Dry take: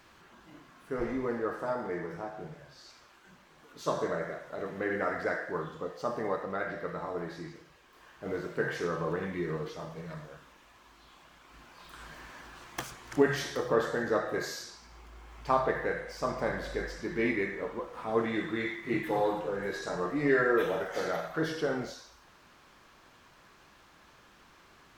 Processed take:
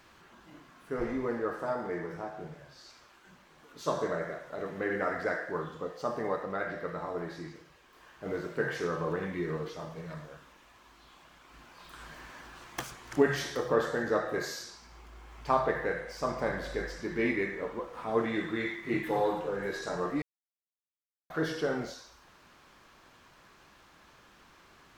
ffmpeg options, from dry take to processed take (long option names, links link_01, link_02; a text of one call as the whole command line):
ffmpeg -i in.wav -filter_complex "[0:a]asplit=3[link_01][link_02][link_03];[link_01]atrim=end=20.22,asetpts=PTS-STARTPTS,afade=type=out:start_time=20.216:duration=0.004:curve=hsin[link_04];[link_02]atrim=start=20.22:end=21.3,asetpts=PTS-STARTPTS,volume=0[link_05];[link_03]atrim=start=21.3,asetpts=PTS-STARTPTS,afade=type=in:duration=0.004:curve=hsin[link_06];[link_04][link_05][link_06]concat=n=3:v=0:a=1" out.wav